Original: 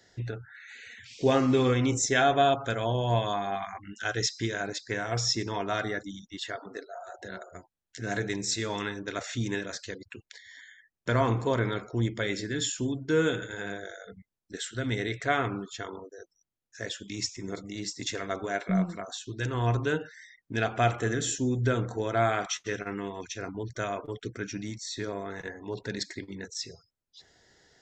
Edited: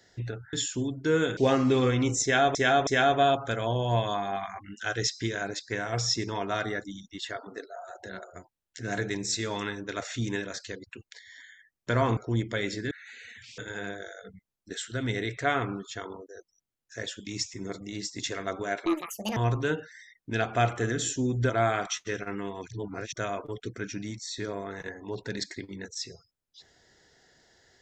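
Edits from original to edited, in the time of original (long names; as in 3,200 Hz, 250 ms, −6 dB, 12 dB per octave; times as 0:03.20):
0:00.53–0:01.20: swap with 0:12.57–0:13.41
0:02.06–0:02.38: repeat, 3 plays
0:11.36–0:11.83: remove
0:18.69–0:19.59: play speed 178%
0:21.72–0:22.09: remove
0:23.30–0:23.72: reverse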